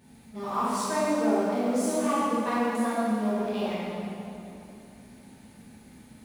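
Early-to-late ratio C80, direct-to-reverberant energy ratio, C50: -2.0 dB, -11.5 dB, -5.0 dB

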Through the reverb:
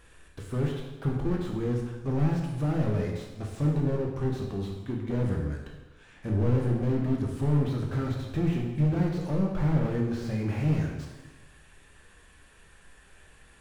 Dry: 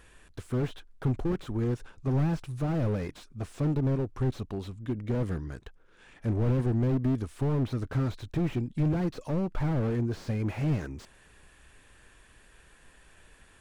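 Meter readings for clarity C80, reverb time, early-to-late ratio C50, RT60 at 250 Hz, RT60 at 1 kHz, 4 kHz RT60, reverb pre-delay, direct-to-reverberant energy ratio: 5.5 dB, 1.1 s, 3.5 dB, 1.1 s, 1.1 s, 1.0 s, 5 ms, -0.5 dB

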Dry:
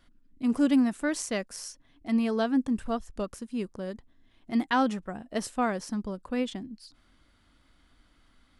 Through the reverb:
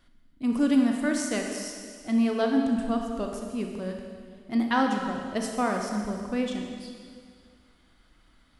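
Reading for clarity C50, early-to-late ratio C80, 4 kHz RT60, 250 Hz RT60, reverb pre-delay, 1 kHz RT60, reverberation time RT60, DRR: 3.0 dB, 4.5 dB, 2.0 s, 2.0 s, 28 ms, 2.0 s, 2.1 s, 2.0 dB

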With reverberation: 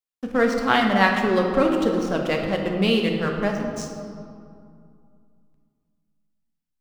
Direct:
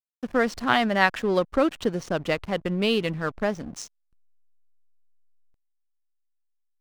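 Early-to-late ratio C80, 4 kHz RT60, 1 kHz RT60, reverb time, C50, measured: 5.0 dB, 1.3 s, 2.4 s, 2.4 s, 4.0 dB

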